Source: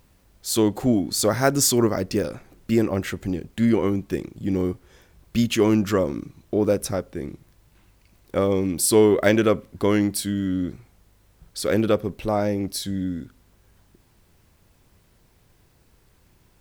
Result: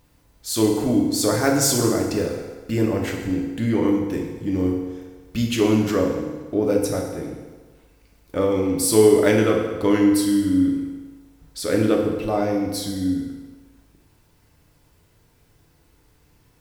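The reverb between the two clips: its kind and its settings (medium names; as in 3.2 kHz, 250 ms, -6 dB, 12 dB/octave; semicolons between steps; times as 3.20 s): FDN reverb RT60 1.4 s, low-frequency decay 0.8×, high-frequency decay 0.8×, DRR -0.5 dB; trim -2.5 dB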